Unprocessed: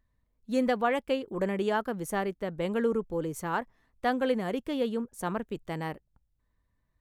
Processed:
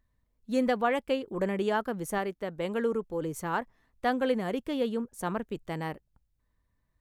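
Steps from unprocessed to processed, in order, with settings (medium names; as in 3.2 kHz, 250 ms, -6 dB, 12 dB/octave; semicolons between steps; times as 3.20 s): 2.18–3.22 s: bass shelf 200 Hz -6.5 dB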